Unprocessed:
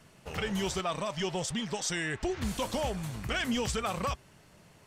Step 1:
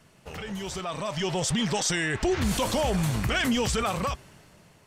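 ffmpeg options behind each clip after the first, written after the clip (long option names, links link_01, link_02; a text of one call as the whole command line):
ffmpeg -i in.wav -af "alimiter=level_in=5dB:limit=-24dB:level=0:latency=1:release=18,volume=-5dB,dynaudnorm=framelen=240:gausssize=9:maxgain=11.5dB" out.wav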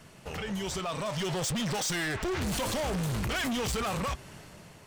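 ffmpeg -i in.wav -af "asoftclip=type=hard:threshold=-30dB,alimiter=level_in=10dB:limit=-24dB:level=0:latency=1:release=203,volume=-10dB,volume=5dB" out.wav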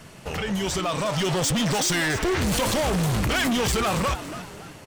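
ffmpeg -i in.wav -filter_complex "[0:a]asplit=4[link_01][link_02][link_03][link_04];[link_02]adelay=283,afreqshift=120,volume=-13dB[link_05];[link_03]adelay=566,afreqshift=240,volume=-22.1dB[link_06];[link_04]adelay=849,afreqshift=360,volume=-31.2dB[link_07];[link_01][link_05][link_06][link_07]amix=inputs=4:normalize=0,volume=7.5dB" out.wav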